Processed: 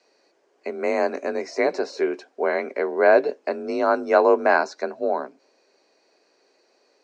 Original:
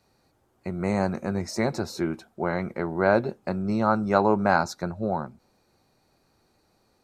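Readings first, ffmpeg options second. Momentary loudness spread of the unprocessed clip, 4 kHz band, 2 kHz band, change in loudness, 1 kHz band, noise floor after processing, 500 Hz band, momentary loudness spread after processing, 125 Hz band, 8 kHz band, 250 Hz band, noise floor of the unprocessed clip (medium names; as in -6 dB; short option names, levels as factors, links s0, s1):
9 LU, 0.0 dB, +5.0 dB, +3.5 dB, +2.5 dB, -65 dBFS, +6.5 dB, 12 LU, under -20 dB, no reading, -3.5 dB, -68 dBFS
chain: -filter_complex "[0:a]afreqshift=40,highpass=f=370:w=0.5412,highpass=f=370:w=1.3066,equalizer=f=860:t=q:w=4:g=-9,equalizer=f=1300:t=q:w=4:g=-9,equalizer=f=3600:t=q:w=4:g=-6,lowpass=f=6300:w=0.5412,lowpass=f=6300:w=1.3066,acrossover=split=3100[s0][s1];[s1]acompressor=threshold=0.00355:ratio=4:attack=1:release=60[s2];[s0][s2]amix=inputs=2:normalize=0,volume=2.51"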